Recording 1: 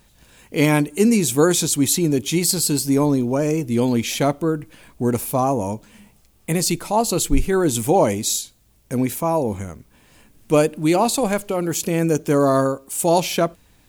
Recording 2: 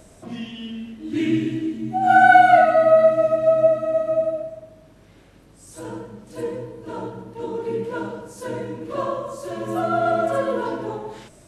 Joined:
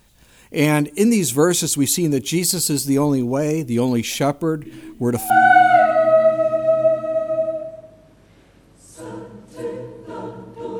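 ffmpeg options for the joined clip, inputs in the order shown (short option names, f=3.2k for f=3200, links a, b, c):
-filter_complex "[1:a]asplit=2[a][b];[0:a]apad=whole_dur=10.79,atrim=end=10.79,atrim=end=5.302[c];[b]atrim=start=2.088:end=7.58[d];[a]atrim=start=1.44:end=2.09,asetpts=PTS-STARTPTS,volume=-12.5dB,afade=t=in:d=0.004:c=hsin,afade=t=out:st=0.646:d=0.004:c=hsin,adelay=205065S[e];[c][d]acrossfade=d=0.004:c1=hsin:c2=hsin[f];[f][e]amix=inputs=2:normalize=0"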